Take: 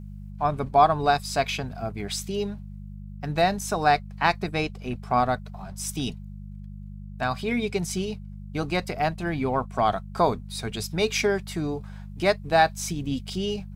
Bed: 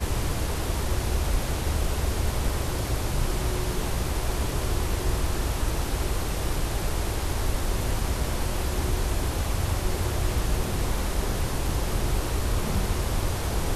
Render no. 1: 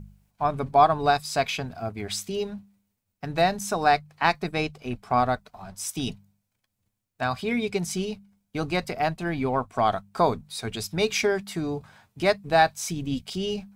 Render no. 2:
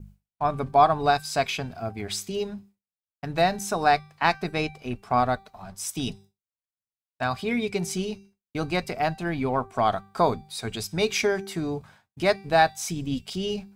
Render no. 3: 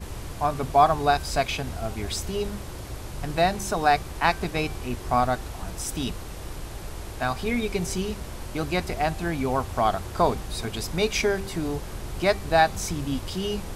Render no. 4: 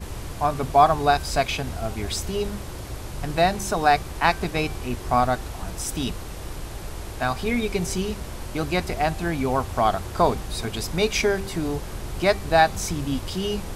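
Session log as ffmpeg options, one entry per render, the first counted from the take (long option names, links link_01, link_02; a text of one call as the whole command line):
ffmpeg -i in.wav -af "bandreject=frequency=50:width_type=h:width=4,bandreject=frequency=100:width_type=h:width=4,bandreject=frequency=150:width_type=h:width=4,bandreject=frequency=200:width_type=h:width=4" out.wav
ffmpeg -i in.wav -af "bandreject=frequency=389.9:width_type=h:width=4,bandreject=frequency=779.8:width_type=h:width=4,bandreject=frequency=1169.7:width_type=h:width=4,bandreject=frequency=1559.6:width_type=h:width=4,bandreject=frequency=1949.5:width_type=h:width=4,bandreject=frequency=2339.4:width_type=h:width=4,bandreject=frequency=2729.3:width_type=h:width=4,bandreject=frequency=3119.2:width_type=h:width=4,bandreject=frequency=3509.1:width_type=h:width=4,bandreject=frequency=3899:width_type=h:width=4,bandreject=frequency=4288.9:width_type=h:width=4,bandreject=frequency=4678.8:width_type=h:width=4,bandreject=frequency=5068.7:width_type=h:width=4,bandreject=frequency=5458.6:width_type=h:width=4,bandreject=frequency=5848.5:width_type=h:width=4,bandreject=frequency=6238.4:width_type=h:width=4,bandreject=frequency=6628.3:width_type=h:width=4,bandreject=frequency=7018.2:width_type=h:width=4,bandreject=frequency=7408.1:width_type=h:width=4,bandreject=frequency=7798:width_type=h:width=4,bandreject=frequency=8187.9:width_type=h:width=4,bandreject=frequency=8577.8:width_type=h:width=4,bandreject=frequency=8967.7:width_type=h:width=4,bandreject=frequency=9357.6:width_type=h:width=4,bandreject=frequency=9747.5:width_type=h:width=4,agate=range=-33dB:threshold=-45dB:ratio=3:detection=peak" out.wav
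ffmpeg -i in.wav -i bed.wav -filter_complex "[1:a]volume=-9dB[link_01];[0:a][link_01]amix=inputs=2:normalize=0" out.wav
ffmpeg -i in.wav -af "volume=2dB" out.wav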